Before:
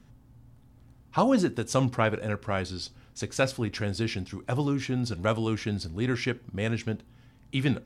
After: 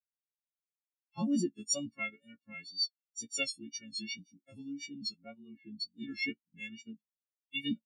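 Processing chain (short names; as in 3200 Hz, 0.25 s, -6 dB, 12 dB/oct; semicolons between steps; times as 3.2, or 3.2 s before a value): frequency quantiser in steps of 4 st; HPF 240 Hz 12 dB/oct; harmonic-percussive split percussive +9 dB; band shelf 750 Hz -10.5 dB 2.6 oct; wow and flutter 64 cents; 5.17–5.8 air absorption 410 m; spectral expander 2.5:1; gain -8.5 dB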